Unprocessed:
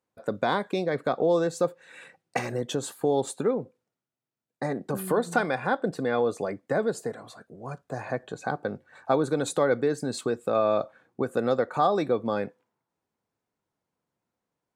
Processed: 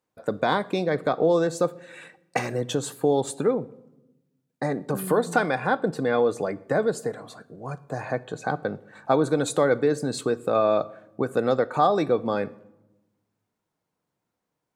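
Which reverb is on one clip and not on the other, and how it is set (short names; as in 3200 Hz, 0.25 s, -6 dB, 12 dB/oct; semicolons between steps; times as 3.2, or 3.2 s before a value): shoebox room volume 3700 m³, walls furnished, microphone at 0.5 m; gain +2.5 dB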